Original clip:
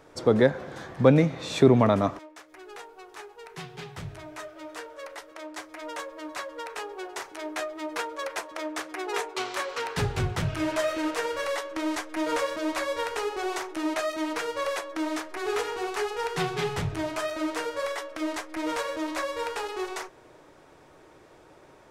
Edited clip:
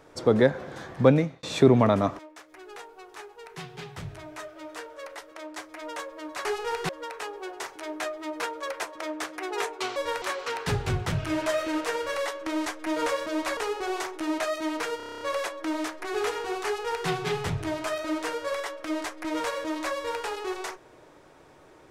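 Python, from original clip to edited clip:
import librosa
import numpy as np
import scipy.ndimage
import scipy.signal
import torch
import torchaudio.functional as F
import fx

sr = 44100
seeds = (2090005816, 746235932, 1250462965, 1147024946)

y = fx.edit(x, sr, fx.fade_out_span(start_s=1.08, length_s=0.35),
    fx.move(start_s=12.87, length_s=0.26, to_s=9.52),
    fx.stutter(start_s=14.53, slice_s=0.03, count=9),
    fx.duplicate(start_s=15.97, length_s=0.44, to_s=6.45), tone=tone)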